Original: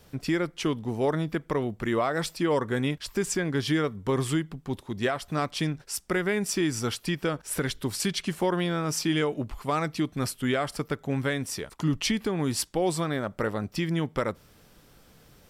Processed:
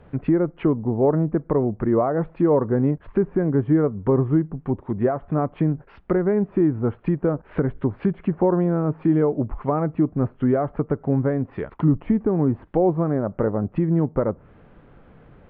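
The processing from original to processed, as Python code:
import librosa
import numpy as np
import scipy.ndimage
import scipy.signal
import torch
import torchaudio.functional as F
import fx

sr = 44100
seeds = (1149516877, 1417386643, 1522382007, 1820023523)

y = scipy.ndimage.gaussian_filter1d(x, 4.2, mode='constant')
y = fx.env_lowpass_down(y, sr, base_hz=860.0, full_db=-27.5)
y = y * 10.0 ** (8.0 / 20.0)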